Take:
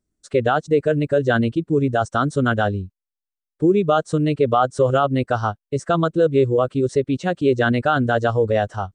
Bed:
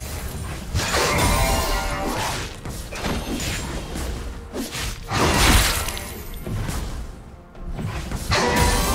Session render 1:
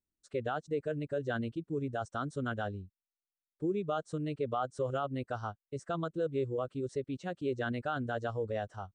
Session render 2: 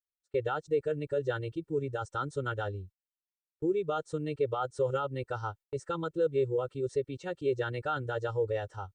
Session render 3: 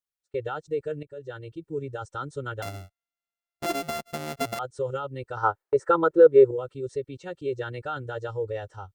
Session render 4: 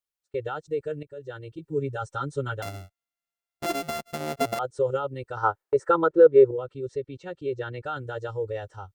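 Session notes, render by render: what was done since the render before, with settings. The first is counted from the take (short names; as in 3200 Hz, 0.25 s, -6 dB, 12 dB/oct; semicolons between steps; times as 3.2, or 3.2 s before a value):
gain -16.5 dB
gate -52 dBFS, range -23 dB; comb 2.2 ms, depth 97%
1.03–1.79 fade in, from -14.5 dB; 2.62–4.59 sample sorter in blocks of 64 samples; 5.37–6.51 band shelf 780 Hz +14 dB 2.9 oct
1.58–2.57 comb 7.3 ms, depth 86%; 4.2–5.14 bell 500 Hz +5 dB 2 oct; 6.06–7.84 air absorption 71 m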